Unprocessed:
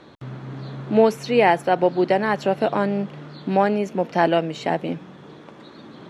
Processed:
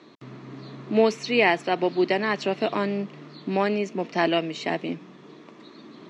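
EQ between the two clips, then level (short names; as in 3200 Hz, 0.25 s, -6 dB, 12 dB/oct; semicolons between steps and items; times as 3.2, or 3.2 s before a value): dynamic EQ 3100 Hz, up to +6 dB, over -37 dBFS, Q 0.74; speaker cabinet 230–7300 Hz, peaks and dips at 530 Hz -9 dB, 820 Hz -9 dB, 1500 Hz -9 dB, 3300 Hz -5 dB; 0.0 dB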